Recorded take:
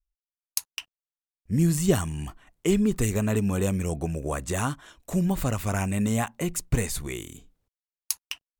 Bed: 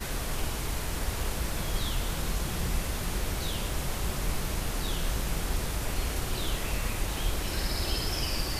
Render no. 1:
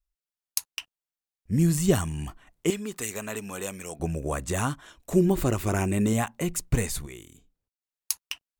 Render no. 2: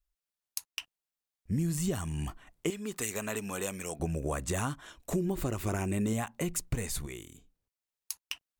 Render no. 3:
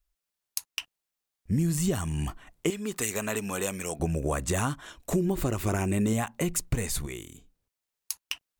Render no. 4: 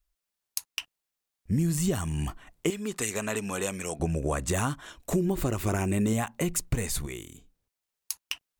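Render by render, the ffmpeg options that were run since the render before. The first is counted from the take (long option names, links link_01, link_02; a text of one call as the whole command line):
ffmpeg -i in.wav -filter_complex "[0:a]asettb=1/sr,asplit=3[link_01][link_02][link_03];[link_01]atrim=end=2.704[link_04];[link_02]atrim=start=2.7:end=4,asetpts=PTS-STARTPTS,afade=type=in:duration=0.004:curve=qsin,afade=type=out:start_time=1.296:duration=0.004:curve=qsin,highpass=frequency=950:poles=1[link_05];[link_03]atrim=start=3.996[link_06];[link_04][link_05]acrossfade=duration=0.004:curve1=hsin:curve2=qsin[link_07];[link_07][link_06]acrossfade=duration=0.004:curve1=qsin:curve2=hsin,asettb=1/sr,asplit=3[link_08][link_09][link_10];[link_08]atrim=end=5.124[link_11];[link_09]atrim=start=5.12:end=6.13,asetpts=PTS-STARTPTS,afade=type=in:duration=0.004:curve=qsin,afade=type=out:start_time=1.006:duration=0.004:curve=qsin,equalizer=frequency=360:width_type=o:width=0.37:gain=14.5[link_12];[link_10]atrim=start=6.126[link_13];[link_11][link_12]acrossfade=duration=0.004:curve1=hsin:curve2=qsin[link_14];[link_14][link_13]acrossfade=duration=0.004:curve1=qsin:curve2=hsin,asplit=3[link_15][link_16][link_17];[link_15]atrim=end=7.06,asetpts=PTS-STARTPTS,afade=type=out:start_time=6.7:duration=0.36:curve=log:silence=0.354813[link_18];[link_16]atrim=start=7.06:end=7.81,asetpts=PTS-STARTPTS,volume=-9dB[link_19];[link_17]atrim=start=7.81,asetpts=PTS-STARTPTS,afade=type=in:duration=0.36:curve=log:silence=0.354813[link_20];[link_18][link_19][link_20]concat=n=3:v=0:a=1" out.wav
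ffmpeg -i in.wav -af "alimiter=limit=-14.5dB:level=0:latency=1:release=355,acompressor=threshold=-30dB:ratio=2.5" out.wav
ffmpeg -i in.wav -af "volume=4.5dB" out.wav
ffmpeg -i in.wav -filter_complex "[0:a]asettb=1/sr,asplit=3[link_01][link_02][link_03];[link_01]atrim=end=2.884[link_04];[link_02]atrim=start=2.88:end=4.46,asetpts=PTS-STARTPTS,afade=type=in:duration=0.004:curve=qsin,afade=type=out:start_time=1.576:duration=0.004:curve=qsin,lowpass=11000[link_05];[link_03]atrim=start=4.456[link_06];[link_04][link_05]acrossfade=duration=0.004:curve1=hsin:curve2=qsin[link_07];[link_07][link_06]acrossfade=duration=0.004:curve1=qsin:curve2=hsin" out.wav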